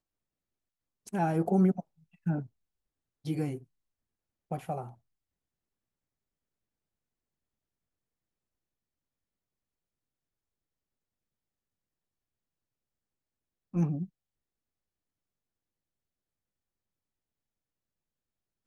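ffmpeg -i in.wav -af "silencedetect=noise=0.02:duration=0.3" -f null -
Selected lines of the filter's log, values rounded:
silence_start: 0.00
silence_end: 1.08 | silence_duration: 1.08
silence_start: 1.80
silence_end: 2.27 | silence_duration: 0.47
silence_start: 2.41
silence_end: 3.26 | silence_duration: 0.84
silence_start: 3.56
silence_end: 4.51 | silence_duration: 0.95
silence_start: 4.82
silence_end: 13.74 | silence_duration: 8.92
silence_start: 14.04
silence_end: 18.67 | silence_duration: 4.62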